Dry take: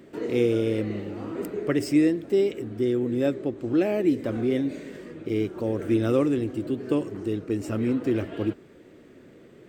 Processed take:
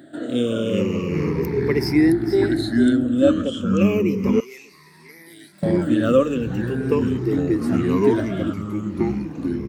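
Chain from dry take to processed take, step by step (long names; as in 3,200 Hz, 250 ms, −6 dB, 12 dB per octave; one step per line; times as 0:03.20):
rippled gain that drifts along the octave scale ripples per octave 0.81, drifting −0.37 Hz, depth 20 dB
high-pass filter 100 Hz
delay with pitch and tempo change per echo 290 ms, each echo −4 semitones, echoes 3
0:01.78–0:02.39: delay throw 450 ms, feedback 20%, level −11.5 dB
0:04.40–0:05.63: first difference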